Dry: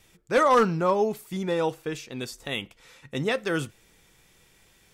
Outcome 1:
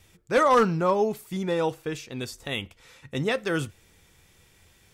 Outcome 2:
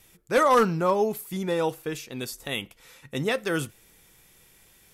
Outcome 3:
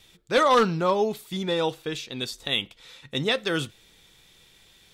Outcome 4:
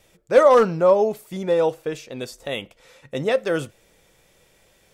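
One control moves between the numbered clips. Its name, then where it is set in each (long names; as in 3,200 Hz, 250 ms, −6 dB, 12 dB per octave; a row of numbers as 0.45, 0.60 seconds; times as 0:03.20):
parametric band, centre frequency: 84, 12,000, 3,700, 570 Hertz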